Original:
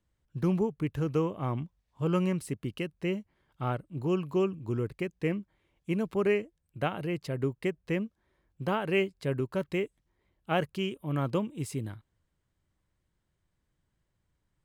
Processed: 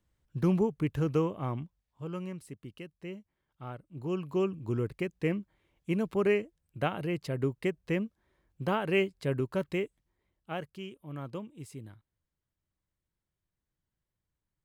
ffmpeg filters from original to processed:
-af "volume=3.76,afade=t=out:st=1.07:d=1.01:silence=0.266073,afade=t=in:st=3.75:d=0.88:silence=0.298538,afade=t=out:st=9.58:d=1.05:silence=0.316228"

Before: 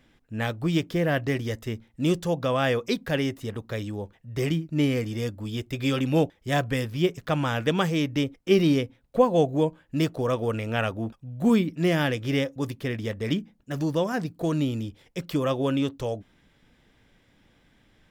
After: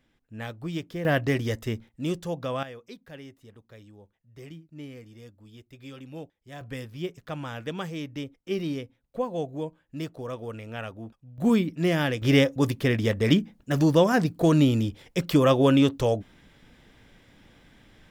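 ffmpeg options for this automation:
-af "asetnsamples=n=441:p=0,asendcmd='1.05 volume volume 1.5dB;1.89 volume volume -5.5dB;2.63 volume volume -18dB;6.61 volume volume -9.5dB;11.38 volume volume -1dB;12.22 volume volume 6dB',volume=0.398"

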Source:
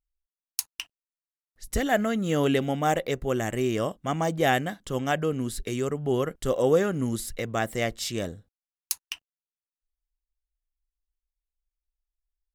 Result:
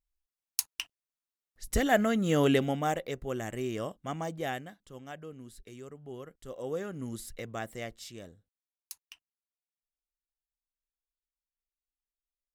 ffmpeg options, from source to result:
-af "volume=2.66,afade=t=out:st=2.54:d=0.45:silence=0.446684,afade=t=out:st=4.1:d=0.71:silence=0.316228,afade=t=in:st=6.47:d=0.86:silence=0.334965,afade=t=out:st=7.33:d=0.89:silence=0.421697"

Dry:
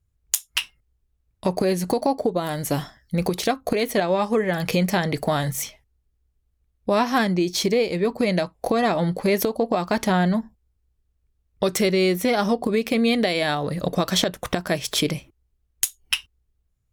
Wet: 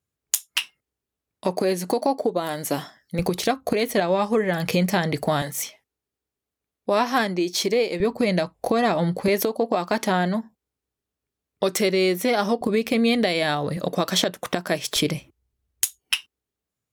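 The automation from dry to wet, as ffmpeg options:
-af "asetnsamples=n=441:p=0,asendcmd='3.19 highpass f 73;5.42 highpass f 260;8 highpass f 68;9.28 highpass f 210;12.61 highpass f 62;13.77 highpass f 180;14.96 highpass f 70;15.99 highpass f 230',highpass=220"

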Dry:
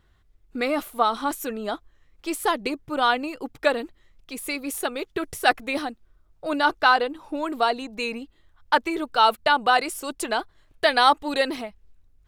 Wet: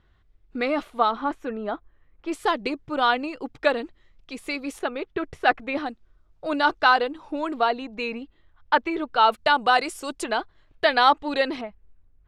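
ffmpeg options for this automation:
-af "asetnsamples=n=441:p=0,asendcmd='1.11 lowpass f 2000;2.32 lowpass f 5200;4.79 lowpass f 2700;5.86 lowpass f 6100;7.54 lowpass f 3400;9.32 lowpass f 8000;10.24 lowpass f 4300;11.61 lowpass f 2100',lowpass=4200"

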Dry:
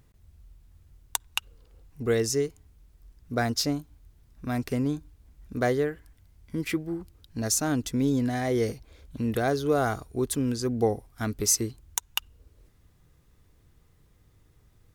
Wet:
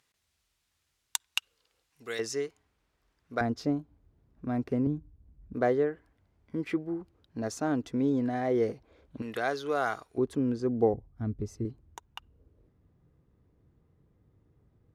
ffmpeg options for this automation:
-af "asetnsamples=n=441:p=0,asendcmd='2.19 bandpass f 1400;3.41 bandpass f 340;4.87 bandpass f 130;5.54 bandpass f 550;9.22 bandpass f 1700;10.18 bandpass f 390;10.94 bandpass f 100;11.65 bandpass f 250',bandpass=f=4100:t=q:w=0.53:csg=0"

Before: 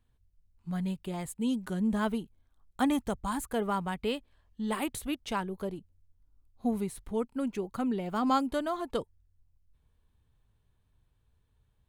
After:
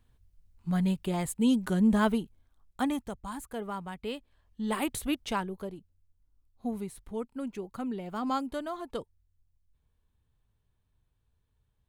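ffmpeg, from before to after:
-af "volume=5.62,afade=t=out:st=1.87:d=1.23:silence=0.266073,afade=t=in:st=3.98:d=1.15:silence=0.334965,afade=t=out:st=5.13:d=0.58:silence=0.421697"

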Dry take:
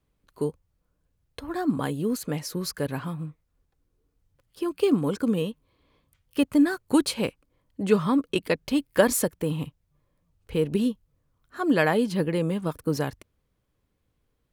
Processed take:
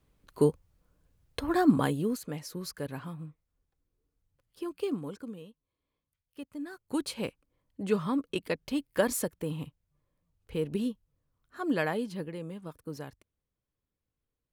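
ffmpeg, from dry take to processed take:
-af "volume=7.08,afade=t=out:st=1.58:d=0.64:silence=0.251189,afade=t=out:st=4.63:d=0.76:silence=0.251189,afade=t=in:st=6.6:d=0.66:silence=0.223872,afade=t=out:st=11.71:d=0.65:silence=0.446684"

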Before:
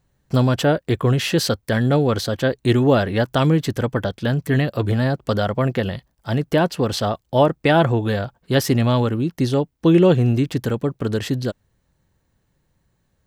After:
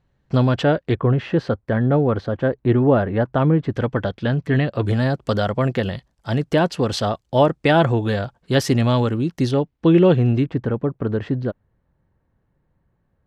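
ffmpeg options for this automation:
-af "asetnsamples=n=441:p=0,asendcmd='0.95 lowpass f 1500;3.72 lowpass f 3500;4.83 lowpass f 8600;9.51 lowpass f 3600;10.44 lowpass f 1600',lowpass=3700"

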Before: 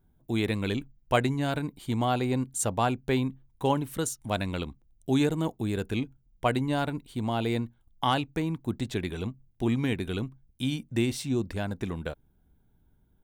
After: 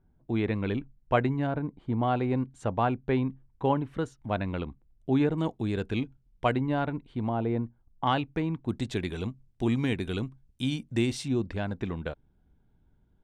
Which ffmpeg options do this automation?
-af "asetnsamples=n=441:p=0,asendcmd='1.47 lowpass f 1200;2.03 lowpass f 2100;5.38 lowpass f 4600;6.53 lowpass f 2200;7.29 lowpass f 1200;8.07 lowpass f 3100;8.69 lowpass f 8200;11.28 lowpass f 3700',lowpass=2100"

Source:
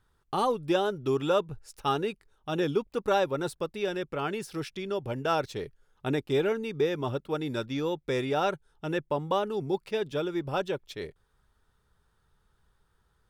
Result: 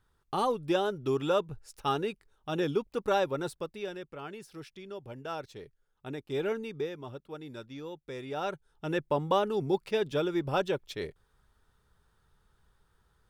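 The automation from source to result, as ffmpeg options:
-af "volume=7.94,afade=t=out:st=3.31:d=0.78:silence=0.375837,afade=t=in:st=6.24:d=0.29:silence=0.421697,afade=t=out:st=6.53:d=0.45:silence=0.375837,afade=t=in:st=8.2:d=0.98:silence=0.237137"

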